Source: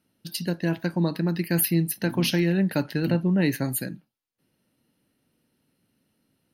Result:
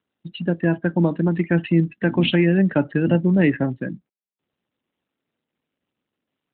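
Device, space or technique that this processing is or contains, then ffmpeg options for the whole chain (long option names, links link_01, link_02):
mobile call with aggressive noise cancelling: -af "highpass=frequency=160:poles=1,afftdn=noise_reduction=27:noise_floor=-36,volume=7.5dB" -ar 8000 -c:a libopencore_amrnb -b:a 12200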